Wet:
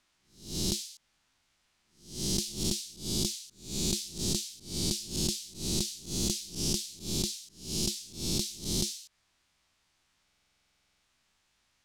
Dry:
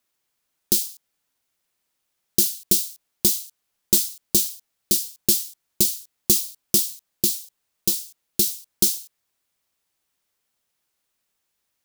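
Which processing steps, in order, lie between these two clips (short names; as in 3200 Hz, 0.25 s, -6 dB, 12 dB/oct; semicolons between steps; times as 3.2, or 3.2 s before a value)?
spectral swells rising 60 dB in 0.48 s; LPF 5900 Hz 12 dB/oct; low shelf 62 Hz +10 dB; compressor 4:1, threshold -36 dBFS, peak gain reduction 16.5 dB; bell 460 Hz -6.5 dB 0.84 oct; stuck buffer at 10.24, samples 2048, times 16; gain +6.5 dB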